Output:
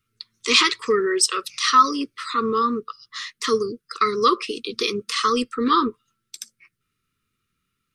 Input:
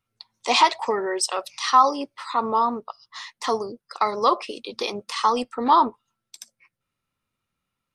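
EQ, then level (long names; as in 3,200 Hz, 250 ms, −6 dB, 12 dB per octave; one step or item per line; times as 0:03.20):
Chebyshev band-stop filter 450–1,200 Hz, order 3
+6.0 dB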